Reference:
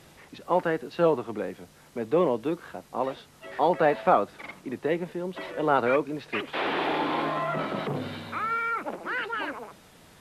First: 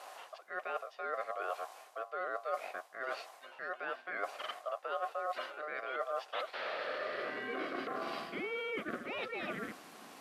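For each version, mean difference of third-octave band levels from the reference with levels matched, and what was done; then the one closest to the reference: 10.0 dB: reverse; compressor 12:1, threshold -37 dBFS, peak gain reduction 22 dB; reverse; ring modulator 910 Hz; high-pass sweep 640 Hz -> 220 Hz, 6.67–8.25; gain +2.5 dB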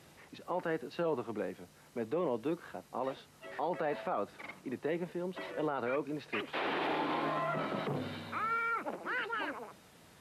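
3.0 dB: limiter -19.5 dBFS, peak gain reduction 11 dB; HPF 58 Hz; notch 3400 Hz, Q 29; gain -5.5 dB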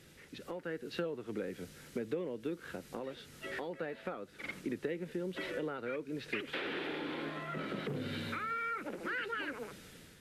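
6.0 dB: compressor 10:1, threshold -35 dBFS, peak gain reduction 19.5 dB; band shelf 850 Hz -10.5 dB 1.1 oct; AGC gain up to 7 dB; gain -5.5 dB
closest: second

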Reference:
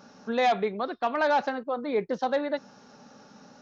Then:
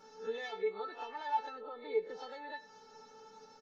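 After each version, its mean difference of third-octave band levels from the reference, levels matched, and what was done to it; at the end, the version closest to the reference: 6.0 dB: spectral swells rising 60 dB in 0.30 s; compressor, threshold -32 dBFS, peak gain reduction 12 dB; resonator 440 Hz, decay 0.18 s, harmonics all, mix 100%; echo 97 ms -18.5 dB; gain +9.5 dB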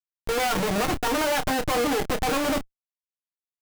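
15.5 dB: minimum comb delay 6.5 ms; steep low-pass 4500 Hz; Schmitt trigger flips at -39 dBFS; doubler 29 ms -9.5 dB; gain +6.5 dB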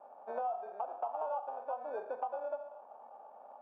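9.5 dB: Schroeder reverb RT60 0.57 s, combs from 26 ms, DRR 7 dB; sample-and-hold 22×; Butterworth band-pass 770 Hz, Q 2.2; compressor 6:1, threshold -41 dBFS, peak gain reduction 18 dB; gain +5.5 dB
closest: first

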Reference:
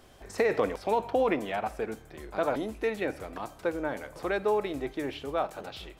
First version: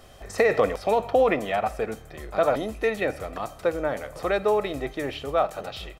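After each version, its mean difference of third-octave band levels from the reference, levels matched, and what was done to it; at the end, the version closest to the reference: 1.0 dB: comb 1.6 ms, depth 38%; gain +5 dB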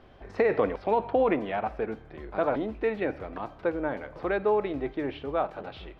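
4.5 dB: air absorption 320 m; gain +3 dB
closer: first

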